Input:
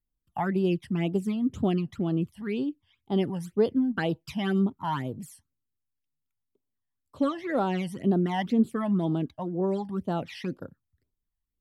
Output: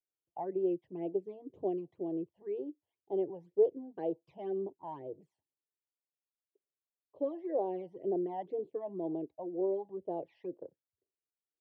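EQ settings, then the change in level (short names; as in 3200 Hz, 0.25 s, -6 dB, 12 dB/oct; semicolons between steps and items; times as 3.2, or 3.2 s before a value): ladder band-pass 430 Hz, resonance 30%; fixed phaser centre 560 Hz, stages 4; +8.0 dB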